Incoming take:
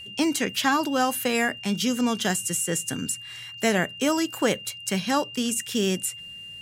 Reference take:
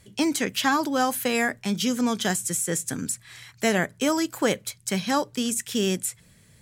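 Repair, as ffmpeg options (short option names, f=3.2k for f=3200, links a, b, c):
-af "bandreject=f=2.8k:w=30"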